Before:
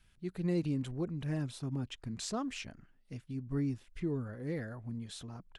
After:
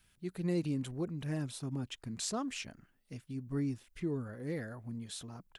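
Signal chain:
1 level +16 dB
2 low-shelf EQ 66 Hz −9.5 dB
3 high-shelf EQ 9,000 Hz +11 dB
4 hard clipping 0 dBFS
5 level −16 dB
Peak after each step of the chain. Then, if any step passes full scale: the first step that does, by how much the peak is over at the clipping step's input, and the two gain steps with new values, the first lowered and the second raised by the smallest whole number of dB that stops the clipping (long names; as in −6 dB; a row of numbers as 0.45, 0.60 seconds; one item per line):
−6.5, −7.0, −4.5, −4.5, −20.5 dBFS
no step passes full scale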